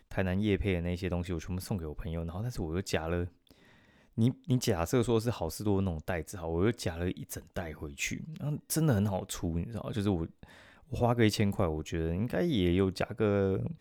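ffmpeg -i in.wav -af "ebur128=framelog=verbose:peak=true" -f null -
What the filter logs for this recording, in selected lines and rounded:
Integrated loudness:
  I:         -32.1 LUFS
  Threshold: -42.4 LUFS
Loudness range:
  LRA:         4.1 LU
  Threshold: -52.8 LUFS
  LRA low:   -34.9 LUFS
  LRA high:  -30.8 LUFS
True peak:
  Peak:      -12.4 dBFS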